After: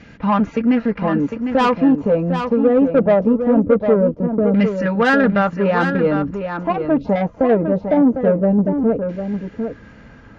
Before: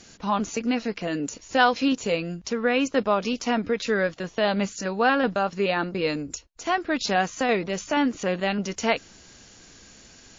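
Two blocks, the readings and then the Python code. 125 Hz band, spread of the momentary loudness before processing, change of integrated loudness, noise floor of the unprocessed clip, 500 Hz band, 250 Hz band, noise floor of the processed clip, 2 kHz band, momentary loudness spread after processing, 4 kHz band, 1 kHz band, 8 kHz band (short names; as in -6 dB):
+13.0 dB, 7 LU, +8.0 dB, -52 dBFS, +9.5 dB, +11.0 dB, -43 dBFS, +2.0 dB, 8 LU, -5.5 dB, +3.5 dB, n/a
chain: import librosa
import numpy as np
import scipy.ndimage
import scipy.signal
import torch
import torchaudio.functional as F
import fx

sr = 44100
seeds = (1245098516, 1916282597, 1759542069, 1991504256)

y = fx.low_shelf(x, sr, hz=420.0, db=8.5)
y = fx.filter_lfo_lowpass(y, sr, shape='saw_down', hz=0.22, low_hz=370.0, high_hz=2200.0, q=1.9)
y = 10.0 ** (-12.5 / 20.0) * np.tanh(y / 10.0 ** (-12.5 / 20.0))
y = fx.notch_comb(y, sr, f0_hz=370.0)
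y = y + 10.0 ** (-7.5 / 20.0) * np.pad(y, (int(753 * sr / 1000.0), 0))[:len(y)]
y = y * 10.0 ** (5.5 / 20.0)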